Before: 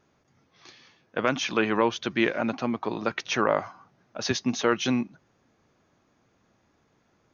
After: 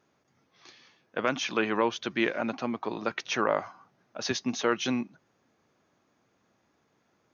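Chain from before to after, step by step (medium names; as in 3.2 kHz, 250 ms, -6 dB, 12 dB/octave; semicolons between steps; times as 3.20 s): high-pass 160 Hz 6 dB/octave; trim -2.5 dB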